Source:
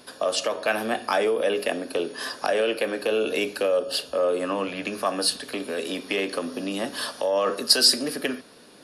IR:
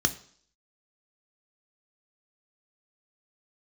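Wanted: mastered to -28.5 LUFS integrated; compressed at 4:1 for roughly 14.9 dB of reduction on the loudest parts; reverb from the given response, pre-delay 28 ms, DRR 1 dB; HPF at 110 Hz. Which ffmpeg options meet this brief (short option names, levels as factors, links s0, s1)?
-filter_complex "[0:a]highpass=110,acompressor=threshold=0.0251:ratio=4,asplit=2[s0][s1];[1:a]atrim=start_sample=2205,adelay=28[s2];[s1][s2]afir=irnorm=-1:irlink=0,volume=0.299[s3];[s0][s3]amix=inputs=2:normalize=0,volume=1.33"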